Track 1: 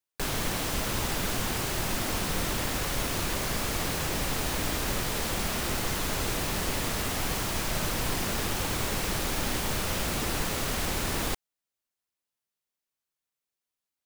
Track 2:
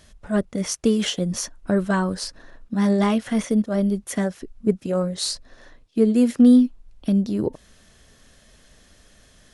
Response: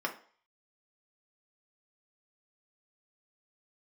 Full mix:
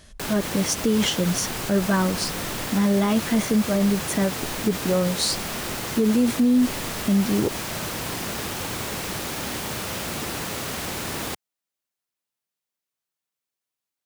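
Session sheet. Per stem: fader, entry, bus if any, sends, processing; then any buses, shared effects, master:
+1.0 dB, 0.00 s, no send, HPF 93 Hz 12 dB/oct
+2.5 dB, 0.00 s, no send, dry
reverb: off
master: limiter -12 dBFS, peak gain reduction 9 dB

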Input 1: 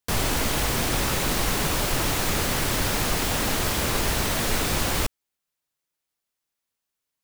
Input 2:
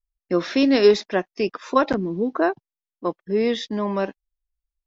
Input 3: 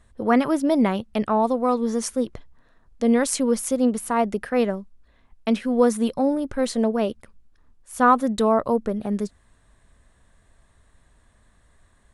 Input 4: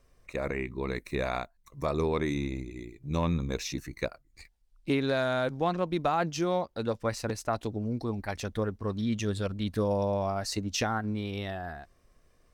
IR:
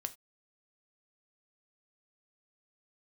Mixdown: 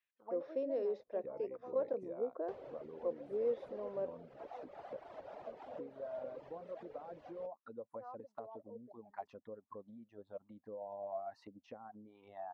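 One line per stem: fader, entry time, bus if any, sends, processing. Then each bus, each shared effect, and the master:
0.0 dB, 2.40 s, bus A, no send, LPF 4400 Hz 12 dB/oct
-7.5 dB, 0.00 s, no bus, no send, limiter -12 dBFS, peak gain reduction 7.5 dB
-12.0 dB, 0.00 s, bus A, no send, dry
+1.0 dB, 0.90 s, bus A, no send, ten-band EQ 125 Hz +8 dB, 250 Hz +11 dB, 500 Hz -4 dB, 1000 Hz +5 dB, 8000 Hz -11 dB
bus A: 0.0 dB, reverb removal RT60 1.3 s; compressor 5:1, threshold -33 dBFS, peak gain reduction 17.5 dB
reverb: off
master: auto-wah 520–2600 Hz, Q 6, down, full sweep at -31 dBFS

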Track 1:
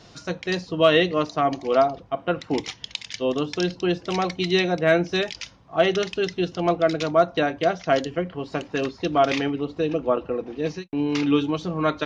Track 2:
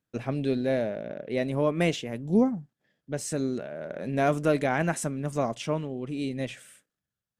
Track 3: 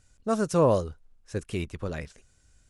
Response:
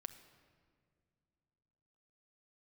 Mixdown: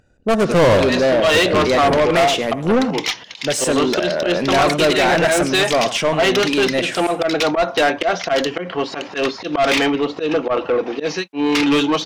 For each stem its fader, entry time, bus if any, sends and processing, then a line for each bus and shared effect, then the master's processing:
-8.5 dB, 0.40 s, no send, no echo send, low shelf 82 Hz -9.5 dB; auto swell 0.128 s
-5.5 dB, 0.35 s, no send, echo send -18.5 dB, dry
-2.0 dB, 0.00 s, send -3.5 dB, echo send -14 dB, Wiener smoothing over 41 samples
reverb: on, pre-delay 6 ms
echo: echo 0.103 s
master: AGC gain up to 5 dB; overdrive pedal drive 28 dB, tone 5100 Hz, clips at -6.5 dBFS

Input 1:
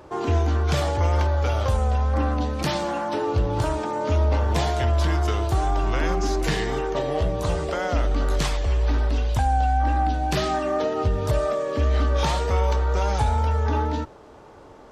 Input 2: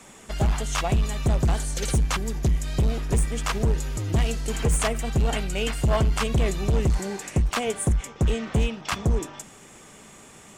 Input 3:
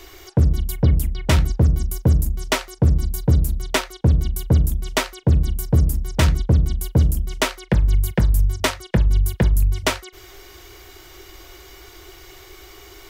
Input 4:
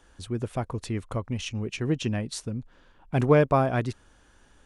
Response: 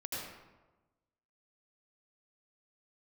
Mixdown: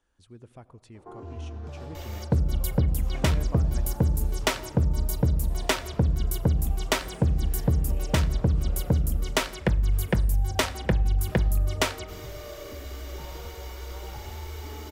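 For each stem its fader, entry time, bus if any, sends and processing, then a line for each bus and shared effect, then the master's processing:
-11.5 dB, 0.95 s, bus A, send -13.5 dB, dry
-17.0 dB, 2.30 s, bus A, send -7 dB, dry
-2.0 dB, 1.95 s, no bus, send -22.5 dB, dry
-18.0 dB, 0.00 s, no bus, send -18.5 dB, dry
bus A: 0.0 dB, LPF 1200 Hz 12 dB/oct; compressor, threshold -42 dBFS, peak gain reduction 14.5 dB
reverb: on, RT60 1.2 s, pre-delay 73 ms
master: compressor, threshold -19 dBFS, peak gain reduction 7.5 dB

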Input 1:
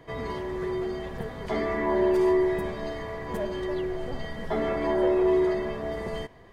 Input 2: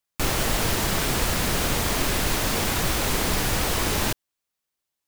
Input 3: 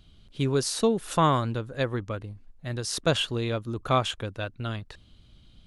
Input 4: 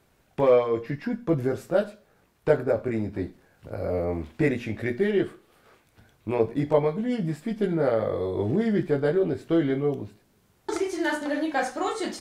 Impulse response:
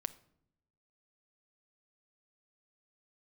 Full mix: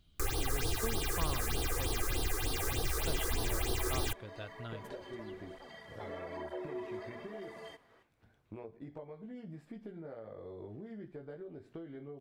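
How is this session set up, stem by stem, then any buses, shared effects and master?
-7.5 dB, 1.50 s, no send, HPF 700 Hz 6 dB/oct; tape flanging out of phase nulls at 1.1 Hz, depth 6.7 ms
-5.0 dB, 0.00 s, no send, comb 2.5 ms, depth 98%; phaser stages 6, 3.3 Hz, lowest notch 190–2200 Hz
-11.0 dB, 0.00 s, no send, dry
-10.5 dB, 2.25 s, no send, high shelf 4500 Hz -11 dB; compressor 10:1, threshold -32 dBFS, peak gain reduction 17.5 dB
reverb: off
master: compressor 1.5:1, threshold -43 dBFS, peak gain reduction 9 dB

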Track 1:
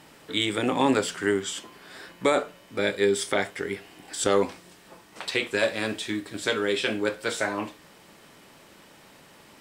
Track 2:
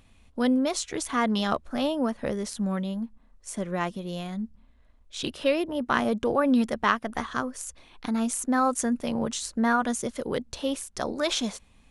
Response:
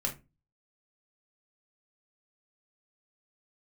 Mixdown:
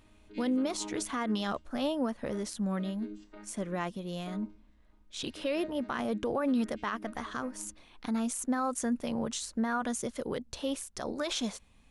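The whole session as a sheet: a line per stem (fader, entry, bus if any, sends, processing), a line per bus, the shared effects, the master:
-12.0 dB, 0.00 s, send -20.5 dB, chord vocoder bare fifth, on G#3; auto duck -13 dB, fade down 1.60 s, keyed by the second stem
-4.0 dB, 0.00 s, no send, dry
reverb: on, RT60 0.25 s, pre-delay 3 ms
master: limiter -22.5 dBFS, peak gain reduction 11 dB

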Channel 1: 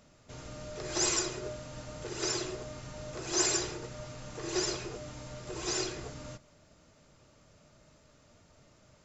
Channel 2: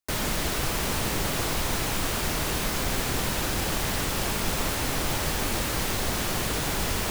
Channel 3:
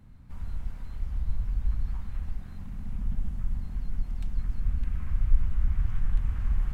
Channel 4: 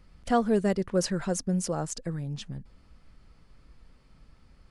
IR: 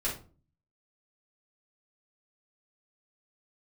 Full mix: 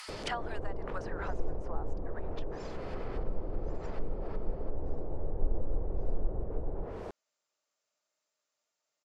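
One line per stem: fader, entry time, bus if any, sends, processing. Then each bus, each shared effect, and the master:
-13.5 dB, 0.30 s, no send, HPF 620 Hz 12 dB/oct; upward expander 1.5:1, over -45 dBFS
-14.0 dB, 0.00 s, no send, EQ curve 240 Hz 0 dB, 460 Hz +10 dB, 3300 Hz -19 dB
-13.0 dB, 0.10 s, send -11.5 dB, dry
+1.5 dB, 0.00 s, no send, steep high-pass 790 Hz 36 dB/oct; three-band squash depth 70%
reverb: on, RT60 0.40 s, pre-delay 3 ms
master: treble ducked by the level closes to 690 Hz, closed at -28 dBFS; high shelf 3400 Hz +8 dB

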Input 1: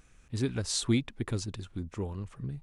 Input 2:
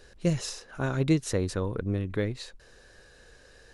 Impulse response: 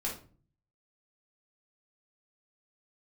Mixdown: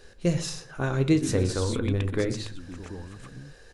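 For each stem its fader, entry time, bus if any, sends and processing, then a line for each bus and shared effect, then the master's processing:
0.0 dB, 0.80 s, no send, echo send -8 dB, bell 290 Hz +8 dB 0.32 oct; sustainer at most 43 dB/s; auto duck -12 dB, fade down 1.80 s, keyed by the second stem
-0.5 dB, 0.00 s, send -9 dB, echo send -18 dB, dry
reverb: on, RT60 0.40 s, pre-delay 3 ms
echo: echo 0.122 s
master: dry

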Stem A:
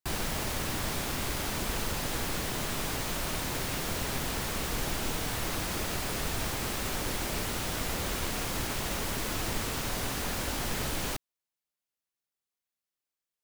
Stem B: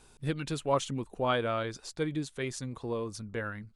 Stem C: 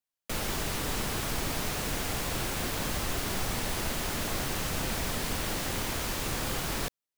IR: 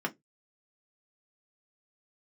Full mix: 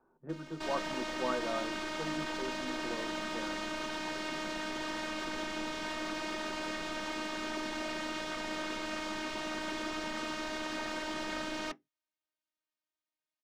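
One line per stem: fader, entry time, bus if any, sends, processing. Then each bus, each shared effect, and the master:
+2.0 dB, 0.55 s, bus A, send -17.5 dB, high shelf 6900 Hz -11 dB
-11.0 dB, 0.00 s, no bus, send -4 dB, LPF 1200 Hz 24 dB/oct
-12.0 dB, 0.00 s, bus A, no send, high shelf 5200 Hz -8.5 dB; soft clip -29.5 dBFS, distortion -14 dB
bus A: 0.0 dB, robotiser 311 Hz; limiter -19.5 dBFS, peak gain reduction 4 dB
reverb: on, RT60 0.15 s, pre-delay 3 ms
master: three-band isolator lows -13 dB, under 220 Hz, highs -21 dB, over 7300 Hz

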